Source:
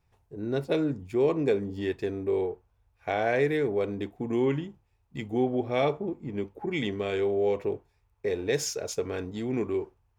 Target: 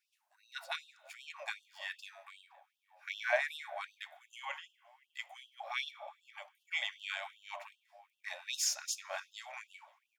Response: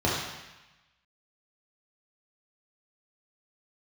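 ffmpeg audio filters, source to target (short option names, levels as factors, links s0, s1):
-filter_complex "[0:a]asplit=2[s0][s1];[s1]adelay=517,lowpass=f=1400:p=1,volume=0.0891,asplit=2[s2][s3];[s3]adelay=517,lowpass=f=1400:p=1,volume=0.39,asplit=2[s4][s5];[s5]adelay=517,lowpass=f=1400:p=1,volume=0.39[s6];[s0][s2][s4][s6]amix=inputs=4:normalize=0,asplit=2[s7][s8];[1:a]atrim=start_sample=2205[s9];[s8][s9]afir=irnorm=-1:irlink=0,volume=0.0299[s10];[s7][s10]amix=inputs=2:normalize=0,afftfilt=real='re*gte(b*sr/1024,540*pow(2700/540,0.5+0.5*sin(2*PI*2.6*pts/sr)))':imag='im*gte(b*sr/1024,540*pow(2700/540,0.5+0.5*sin(2*PI*2.6*pts/sr)))':win_size=1024:overlap=0.75"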